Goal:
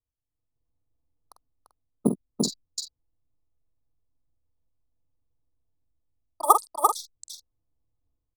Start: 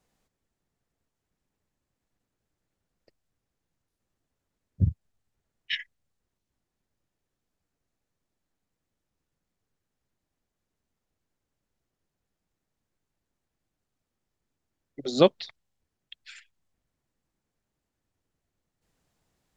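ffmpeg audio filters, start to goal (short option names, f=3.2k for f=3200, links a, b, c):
-filter_complex "[0:a]acrossover=split=1100[a][b];[a]acrusher=samples=10:mix=1:aa=0.000001[c];[b]acompressor=threshold=-40dB:ratio=6[d];[c][d]amix=inputs=2:normalize=0,afftfilt=real='re*(1-between(b*sr/4096,540,1400))':imag='im*(1-between(b*sr/4096,540,1400))':win_size=4096:overlap=0.75,dynaudnorm=f=410:g=5:m=16dB,lowshelf=f=230:g=-7.5,asplit=2[e][f];[f]aecho=0:1:804:0.668[g];[e][g]amix=inputs=2:normalize=0,anlmdn=0.0631,asplit=2[h][i];[i]adelay=110.8,volume=-8dB,highshelf=f=4k:g=-2.49[j];[h][j]amix=inputs=2:normalize=0,asetrate=103194,aresample=44100,equalizer=f=3.2k:t=o:w=2.6:g=5.5,volume=-1.5dB"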